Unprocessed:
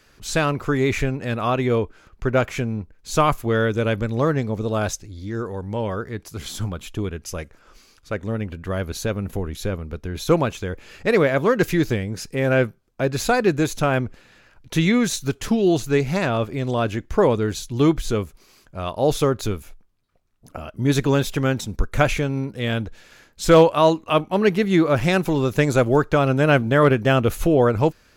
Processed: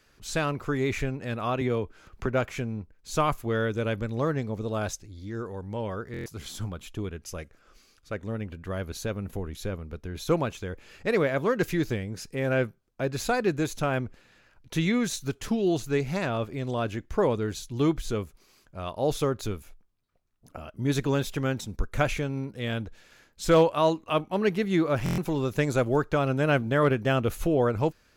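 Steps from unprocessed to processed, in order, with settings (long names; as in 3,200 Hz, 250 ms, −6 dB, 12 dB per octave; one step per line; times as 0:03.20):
0:07.38–0:08.12: notch filter 930 Hz, Q 6.3
buffer that repeats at 0:06.12/0:25.04, samples 1,024, times 5
0:01.61–0:02.26: multiband upward and downward compressor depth 70%
level −7 dB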